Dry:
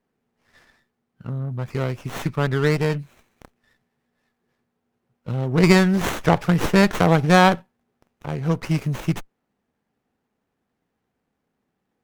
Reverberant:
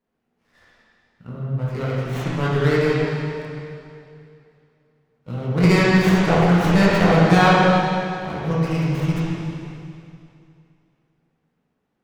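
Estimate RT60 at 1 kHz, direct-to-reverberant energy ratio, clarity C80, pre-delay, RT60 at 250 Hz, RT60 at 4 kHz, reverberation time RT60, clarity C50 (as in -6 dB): 2.6 s, -8.0 dB, -2.0 dB, 7 ms, 2.6 s, 2.4 s, 2.6 s, -4.0 dB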